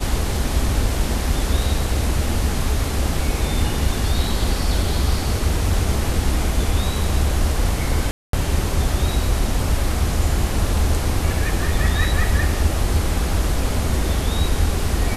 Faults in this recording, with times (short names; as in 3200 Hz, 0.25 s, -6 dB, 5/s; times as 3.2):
8.11–8.33 gap 0.223 s